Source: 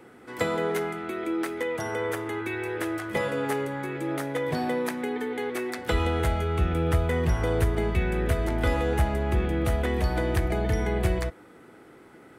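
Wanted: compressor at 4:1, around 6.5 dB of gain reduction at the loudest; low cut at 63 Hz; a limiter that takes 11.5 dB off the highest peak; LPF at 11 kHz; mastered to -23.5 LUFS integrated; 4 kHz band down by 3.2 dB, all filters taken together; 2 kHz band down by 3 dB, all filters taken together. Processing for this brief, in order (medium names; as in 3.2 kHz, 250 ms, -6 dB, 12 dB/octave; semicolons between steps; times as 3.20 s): high-pass 63 Hz; low-pass 11 kHz; peaking EQ 2 kHz -3 dB; peaking EQ 4 kHz -3 dB; compression 4:1, threshold -28 dBFS; trim +12 dB; peak limiter -15 dBFS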